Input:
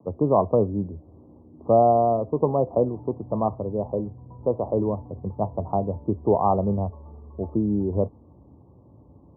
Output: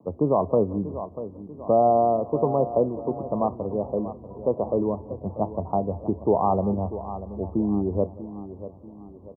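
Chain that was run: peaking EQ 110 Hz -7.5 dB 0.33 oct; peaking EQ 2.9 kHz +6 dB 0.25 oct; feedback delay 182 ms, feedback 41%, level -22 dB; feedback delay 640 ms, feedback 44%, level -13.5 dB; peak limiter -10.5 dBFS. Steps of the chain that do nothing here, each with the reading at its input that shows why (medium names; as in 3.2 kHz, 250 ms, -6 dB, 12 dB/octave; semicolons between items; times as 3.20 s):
peaking EQ 2.9 kHz: input has nothing above 1.3 kHz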